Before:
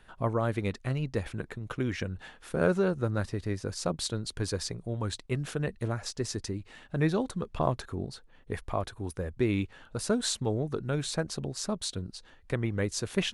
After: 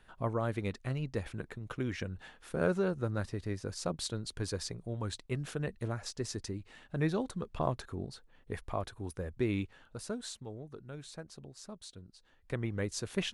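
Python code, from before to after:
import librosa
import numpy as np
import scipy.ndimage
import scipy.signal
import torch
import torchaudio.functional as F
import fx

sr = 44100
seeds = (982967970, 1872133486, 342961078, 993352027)

y = fx.gain(x, sr, db=fx.line((9.57, -4.5), (10.47, -15.0), (12.16, -15.0), (12.56, -5.0)))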